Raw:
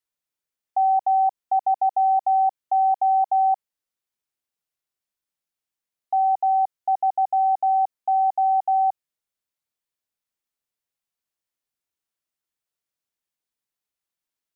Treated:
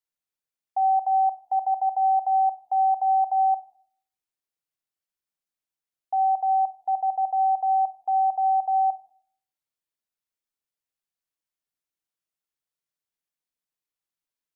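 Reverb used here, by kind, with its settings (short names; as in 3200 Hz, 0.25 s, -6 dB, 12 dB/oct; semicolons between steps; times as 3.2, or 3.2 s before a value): shoebox room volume 820 m³, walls furnished, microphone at 0.54 m; gain -4.5 dB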